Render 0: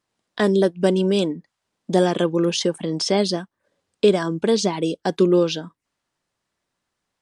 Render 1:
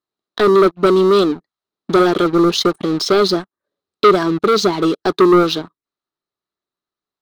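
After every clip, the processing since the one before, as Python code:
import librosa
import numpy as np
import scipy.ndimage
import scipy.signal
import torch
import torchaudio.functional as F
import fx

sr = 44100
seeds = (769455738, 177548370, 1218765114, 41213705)

y = fx.peak_eq(x, sr, hz=430.0, db=13.5, octaves=1.1)
y = fx.leveller(y, sr, passes=3)
y = fx.graphic_eq_31(y, sr, hz=(500, 1250, 4000, 8000), db=(-10, 9, 11, -4))
y = F.gain(torch.from_numpy(y), -10.0).numpy()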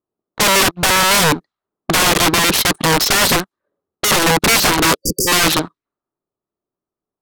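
y = (np.mod(10.0 ** (14.5 / 20.0) * x + 1.0, 2.0) - 1.0) / 10.0 ** (14.5 / 20.0)
y = fx.env_lowpass(y, sr, base_hz=730.0, full_db=-22.0)
y = fx.spec_erase(y, sr, start_s=4.98, length_s=0.3, low_hz=540.0, high_hz=4600.0)
y = F.gain(torch.from_numpy(y), 6.5).numpy()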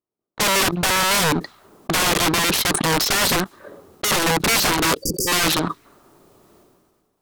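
y = fx.sustainer(x, sr, db_per_s=33.0)
y = F.gain(torch.from_numpy(y), -5.5).numpy()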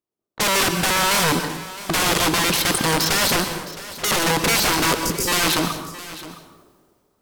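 y = x + 10.0 ** (-16.0 / 20.0) * np.pad(x, (int(664 * sr / 1000.0), 0))[:len(x)]
y = fx.rev_plate(y, sr, seeds[0], rt60_s=0.75, hf_ratio=0.9, predelay_ms=110, drr_db=7.5)
y = F.gain(torch.from_numpy(y), -1.0).numpy()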